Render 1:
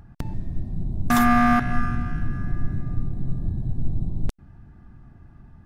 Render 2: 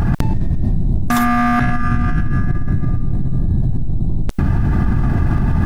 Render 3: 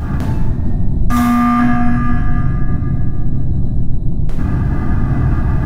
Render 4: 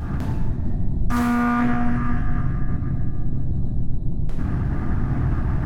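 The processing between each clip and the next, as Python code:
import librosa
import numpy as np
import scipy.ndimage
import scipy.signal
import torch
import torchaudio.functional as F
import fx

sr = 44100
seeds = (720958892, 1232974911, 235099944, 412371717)

y1 = fx.env_flatten(x, sr, amount_pct=100)
y2 = fx.rev_plate(y1, sr, seeds[0], rt60_s=1.7, hf_ratio=0.55, predelay_ms=0, drr_db=-6.5)
y2 = y2 * librosa.db_to_amplitude(-7.5)
y3 = fx.doppler_dist(y2, sr, depth_ms=0.32)
y3 = y3 * librosa.db_to_amplitude(-7.5)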